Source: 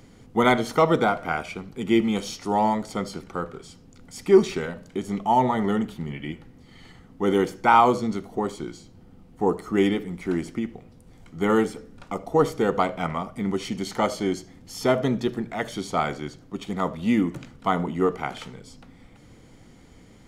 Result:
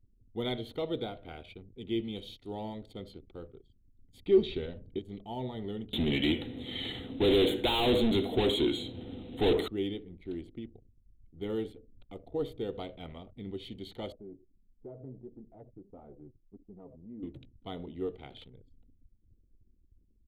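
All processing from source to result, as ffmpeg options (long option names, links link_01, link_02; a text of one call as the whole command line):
ffmpeg -i in.wav -filter_complex "[0:a]asettb=1/sr,asplit=3[link_01][link_02][link_03];[link_01]atrim=end=4.264[link_04];[link_02]atrim=start=4.26:end=4.99,asetpts=PTS-STARTPTS,afade=type=in:duration=0.004:curve=qsin,afade=type=out:start_time=0.726:duration=0.004:curve=qsin,lowpass=4600,lowshelf=frequency=150:gain=3,acontrast=43[link_05];[link_03]atrim=start=4.986[link_06];[link_04][link_05]acrossfade=duration=0.004:curve1=hsin:curve2=qsin[link_07];[link_07][link_06]acrossfade=duration=0.004:curve1=qsin:curve2=hsin,asettb=1/sr,asplit=3[link_08][link_09][link_10];[link_08]atrim=end=5.934[link_11];[link_09]atrim=start=5.93:end=9.68,asetpts=PTS-STARTPTS,afade=type=in:duration=0.004:curve=qsin,afade=type=out:start_time=3.746:duration=0.004:curve=qsin,equalizer=frequency=250:width=3:gain=6,asplit=2[link_12][link_13];[link_13]highpass=frequency=720:poles=1,volume=36dB,asoftclip=type=tanh:threshold=-4dB[link_14];[link_12][link_14]amix=inputs=2:normalize=0,lowpass=frequency=4400:poles=1,volume=-6dB,asuperstop=centerf=5200:order=12:qfactor=2.1[link_15];[link_10]atrim=start=9.676[link_16];[link_11][link_15]acrossfade=duration=0.004:curve1=hsin:curve2=qsin[link_17];[link_17][link_16]acrossfade=duration=0.004:curve1=qsin:curve2=hsin,asettb=1/sr,asplit=3[link_18][link_19][link_20];[link_18]atrim=end=14.124[link_21];[link_19]atrim=start=14.12:end=17.23,asetpts=PTS-STARTPTS,afade=type=in:duration=0.004:curve=qsin,afade=type=out:start_time=3.106:duration=0.004:curve=qsin,lowpass=frequency=1100:width=0.5412,lowpass=frequency=1100:width=1.3066,flanger=delay=3.3:depth=4.8:regen=21:speed=1.6:shape=triangular,acompressor=threshold=-33dB:ratio=2:attack=3.2:release=140:knee=1:detection=peak[link_22];[link_20]atrim=start=17.226[link_23];[link_21][link_22]acrossfade=duration=0.004:curve1=hsin:curve2=qsin[link_24];[link_24][link_23]acrossfade=duration=0.004:curve1=qsin:curve2=hsin,anlmdn=0.398,firequalizer=gain_entry='entry(110,0);entry(160,-13);entry(310,-6);entry(460,-7);entry(1100,-24);entry(3700,2);entry(5400,-27);entry(12000,-10)':delay=0.05:min_phase=1,volume=-5.5dB" out.wav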